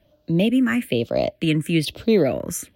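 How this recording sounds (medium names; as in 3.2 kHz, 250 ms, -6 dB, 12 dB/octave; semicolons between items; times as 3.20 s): phasing stages 4, 1.1 Hz, lowest notch 730–1800 Hz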